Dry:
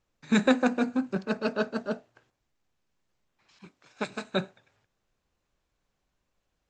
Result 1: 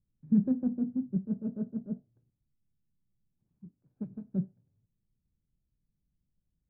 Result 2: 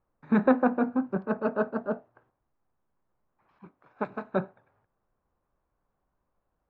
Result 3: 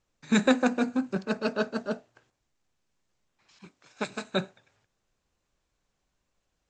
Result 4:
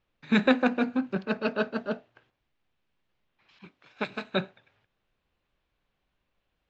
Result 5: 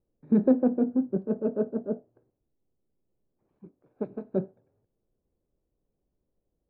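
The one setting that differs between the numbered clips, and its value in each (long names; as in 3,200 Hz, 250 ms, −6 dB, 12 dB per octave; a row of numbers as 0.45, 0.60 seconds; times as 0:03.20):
low-pass with resonance, frequency: 170, 1,100, 8,000, 3,200, 430 Hertz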